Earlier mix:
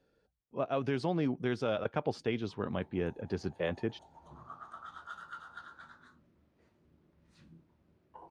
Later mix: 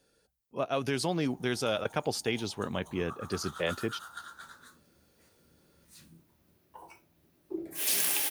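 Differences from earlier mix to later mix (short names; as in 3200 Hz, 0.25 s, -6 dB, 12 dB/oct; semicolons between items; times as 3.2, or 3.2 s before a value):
background: entry -1.40 s; master: remove tape spacing loss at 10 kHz 27 dB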